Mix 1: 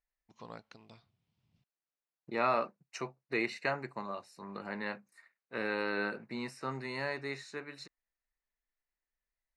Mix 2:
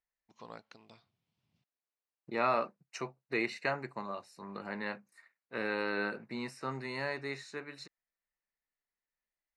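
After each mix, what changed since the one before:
first voice: add low shelf 120 Hz -11.5 dB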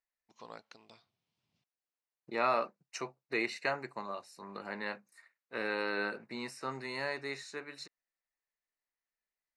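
master: add tone controls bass -6 dB, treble +4 dB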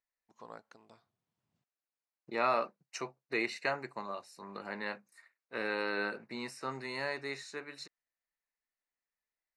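first voice: add band shelf 3600 Hz -9.5 dB

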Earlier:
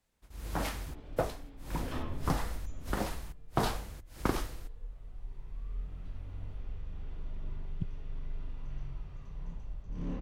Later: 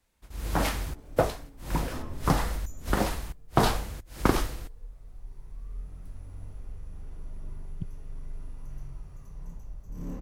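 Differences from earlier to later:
first sound +7.5 dB; second sound: remove synth low-pass 3400 Hz, resonance Q 2

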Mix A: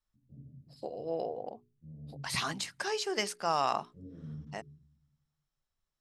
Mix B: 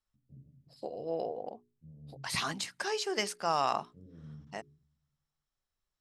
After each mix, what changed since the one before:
first voice: send -9.0 dB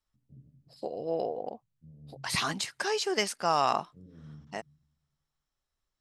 second voice +3.5 dB; master: remove notches 60/120/180/240/300/360/420 Hz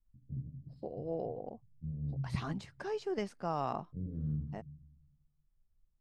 second voice -11.0 dB; master: add tilt -4.5 dB/oct

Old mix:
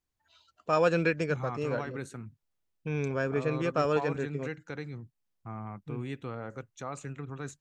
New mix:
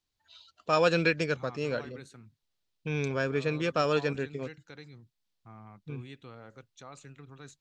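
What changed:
second voice -10.0 dB; master: add bell 4000 Hz +10.5 dB 1.2 oct

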